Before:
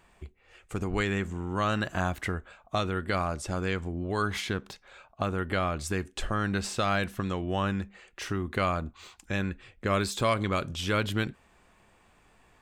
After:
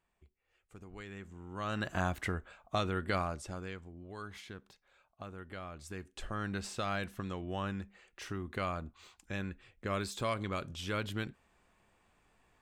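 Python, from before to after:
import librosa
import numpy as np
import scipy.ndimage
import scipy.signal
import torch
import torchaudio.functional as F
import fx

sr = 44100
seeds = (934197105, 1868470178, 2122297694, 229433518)

y = fx.gain(x, sr, db=fx.line((0.95, -20.0), (1.54, -13.0), (1.9, -4.0), (3.16, -4.0), (3.88, -16.5), (5.66, -16.5), (6.41, -8.5)))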